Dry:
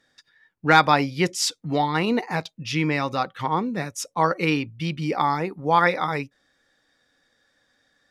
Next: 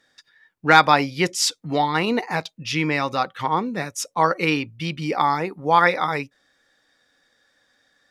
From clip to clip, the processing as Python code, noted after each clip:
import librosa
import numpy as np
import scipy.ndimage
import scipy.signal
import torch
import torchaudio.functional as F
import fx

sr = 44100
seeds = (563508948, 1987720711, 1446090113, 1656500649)

y = fx.low_shelf(x, sr, hz=310.0, db=-5.5)
y = F.gain(torch.from_numpy(y), 3.0).numpy()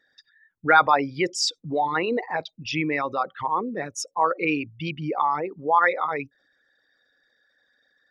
y = fx.envelope_sharpen(x, sr, power=2.0)
y = F.gain(torch.from_numpy(y), -3.0).numpy()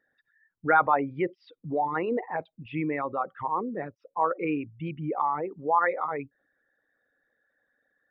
y = scipy.ndimage.gaussian_filter1d(x, 4.2, mode='constant')
y = F.gain(torch.from_numpy(y), -2.5).numpy()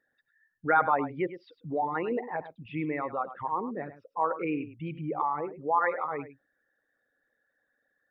y = x + 10.0 ** (-13.0 / 20.0) * np.pad(x, (int(103 * sr / 1000.0), 0))[:len(x)]
y = F.gain(torch.from_numpy(y), -2.5).numpy()